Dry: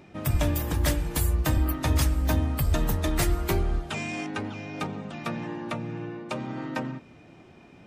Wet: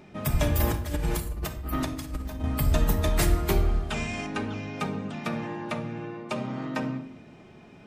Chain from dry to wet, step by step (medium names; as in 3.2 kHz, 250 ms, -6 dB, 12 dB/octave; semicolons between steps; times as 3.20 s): 0.60–2.44 s: compressor with a negative ratio -29 dBFS, ratio -0.5; simulated room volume 1900 m³, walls furnished, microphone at 1.4 m